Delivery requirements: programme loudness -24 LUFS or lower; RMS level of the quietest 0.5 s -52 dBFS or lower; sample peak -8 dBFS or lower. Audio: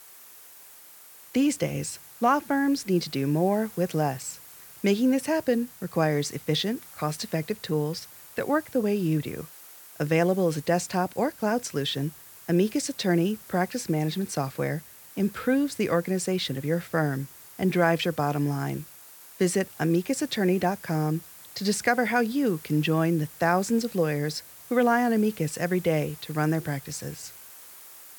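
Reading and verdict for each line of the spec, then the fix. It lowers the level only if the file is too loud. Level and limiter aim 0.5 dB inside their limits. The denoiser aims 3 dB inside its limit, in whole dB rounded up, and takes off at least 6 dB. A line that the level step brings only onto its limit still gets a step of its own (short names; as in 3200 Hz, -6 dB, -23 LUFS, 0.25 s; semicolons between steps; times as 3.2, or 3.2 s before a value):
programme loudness -26.5 LUFS: OK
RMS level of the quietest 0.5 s -49 dBFS: fail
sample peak -7.5 dBFS: fail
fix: denoiser 6 dB, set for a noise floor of -49 dBFS; limiter -8.5 dBFS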